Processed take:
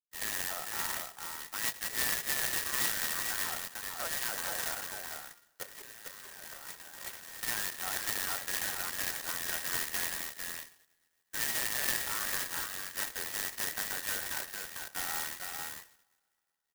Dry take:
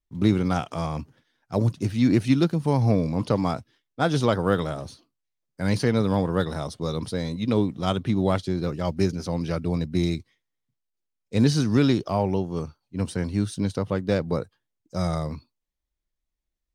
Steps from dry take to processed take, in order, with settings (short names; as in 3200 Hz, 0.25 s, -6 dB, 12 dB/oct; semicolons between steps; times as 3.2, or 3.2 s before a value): band inversion scrambler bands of 2000 Hz; expander -37 dBFS; high shelf 2500 Hz -12 dB; limiter -20.5 dBFS, peak gain reduction 10 dB; 5.63–7.43 negative-ratio compressor -43 dBFS, ratio -1; on a send: echo 0.45 s -4.5 dB; on the sum: two-slope reverb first 0.63 s, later 2.5 s, from -21 dB, DRR 10.5 dB; mistuned SSB +54 Hz 330–3500 Hz; clock jitter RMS 0.12 ms; gain -5.5 dB